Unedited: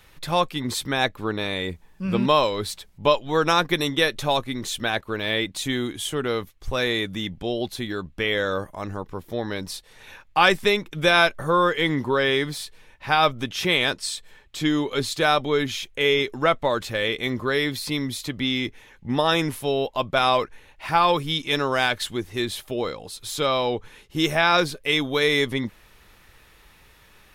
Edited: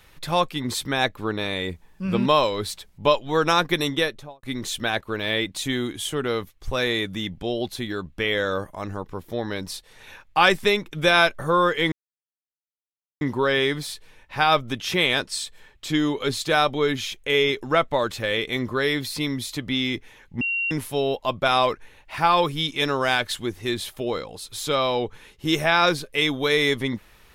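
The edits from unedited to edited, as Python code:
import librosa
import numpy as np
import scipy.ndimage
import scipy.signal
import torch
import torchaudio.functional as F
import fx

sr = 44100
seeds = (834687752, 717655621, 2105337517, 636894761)

y = fx.studio_fade_out(x, sr, start_s=3.9, length_s=0.53)
y = fx.edit(y, sr, fx.insert_silence(at_s=11.92, length_s=1.29),
    fx.bleep(start_s=19.12, length_s=0.3, hz=2750.0, db=-22.0), tone=tone)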